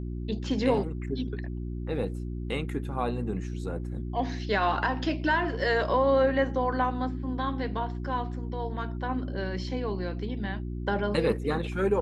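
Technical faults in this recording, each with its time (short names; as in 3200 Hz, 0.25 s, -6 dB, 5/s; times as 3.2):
hum 60 Hz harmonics 6 -34 dBFS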